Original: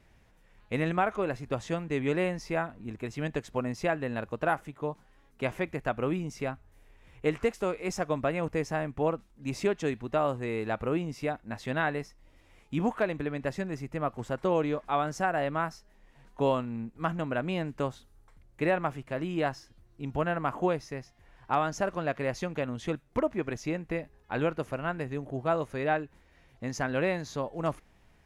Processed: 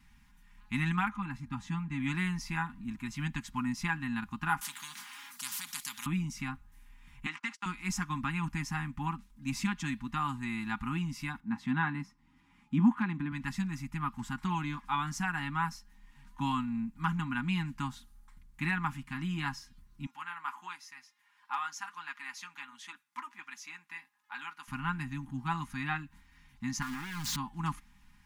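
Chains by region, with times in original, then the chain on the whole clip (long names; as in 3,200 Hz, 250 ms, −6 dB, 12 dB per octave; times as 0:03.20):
0:01.08–0:02.00: high-shelf EQ 2,100 Hz −9 dB + notch comb filter 360 Hz
0:04.61–0:06.06: high-pass filter 840 Hz + every bin compressed towards the loudest bin 10 to 1
0:07.26–0:07.66: noise gate −43 dBFS, range −27 dB + band-pass filter 480–6,000 Hz + multiband upward and downward compressor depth 70%
0:11.40–0:13.32: high-pass filter 250 Hz + spectral tilt −4 dB per octave
0:20.06–0:24.68: high-pass filter 810 Hz + flanger 1.4 Hz, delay 3 ms, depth 5.2 ms, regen −63%
0:26.82–0:27.36: converter with a step at zero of −31.5 dBFS + downward compressor 4 to 1, threshold −33 dBFS + highs frequency-modulated by the lows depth 0.54 ms
whole clip: elliptic band-stop filter 290–890 Hz, stop band 40 dB; high-shelf EQ 9,200 Hz +4.5 dB; comb filter 4.9 ms, depth 56%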